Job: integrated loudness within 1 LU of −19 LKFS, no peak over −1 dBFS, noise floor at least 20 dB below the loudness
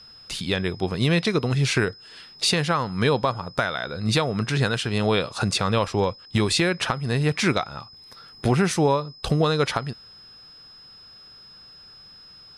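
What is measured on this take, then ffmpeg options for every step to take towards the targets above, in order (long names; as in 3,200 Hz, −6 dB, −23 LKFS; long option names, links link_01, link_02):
interfering tone 5,100 Hz; level of the tone −45 dBFS; integrated loudness −23.5 LKFS; sample peak −10.0 dBFS; target loudness −19.0 LKFS
→ -af "bandreject=frequency=5100:width=30"
-af "volume=4.5dB"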